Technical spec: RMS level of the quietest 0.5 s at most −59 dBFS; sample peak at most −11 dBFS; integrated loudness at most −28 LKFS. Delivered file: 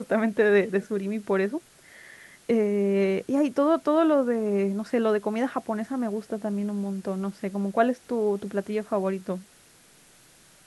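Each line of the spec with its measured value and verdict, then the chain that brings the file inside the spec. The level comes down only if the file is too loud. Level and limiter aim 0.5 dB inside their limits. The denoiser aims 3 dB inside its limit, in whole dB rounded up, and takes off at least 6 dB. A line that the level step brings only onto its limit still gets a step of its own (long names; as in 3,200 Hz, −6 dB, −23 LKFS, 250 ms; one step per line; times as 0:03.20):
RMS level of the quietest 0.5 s −56 dBFS: out of spec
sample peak −9.5 dBFS: out of spec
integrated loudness −26.0 LKFS: out of spec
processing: broadband denoise 6 dB, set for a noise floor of −56 dBFS
level −2.5 dB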